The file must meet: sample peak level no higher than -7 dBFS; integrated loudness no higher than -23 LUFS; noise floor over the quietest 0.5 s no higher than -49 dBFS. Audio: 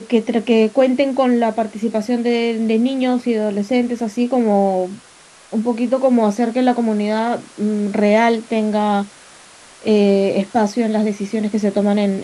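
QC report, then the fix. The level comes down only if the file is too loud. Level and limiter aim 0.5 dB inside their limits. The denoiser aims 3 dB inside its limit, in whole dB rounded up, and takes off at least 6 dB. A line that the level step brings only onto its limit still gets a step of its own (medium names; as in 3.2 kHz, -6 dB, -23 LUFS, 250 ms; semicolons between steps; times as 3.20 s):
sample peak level -2.5 dBFS: fail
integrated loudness -17.5 LUFS: fail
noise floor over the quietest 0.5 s -45 dBFS: fail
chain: trim -6 dB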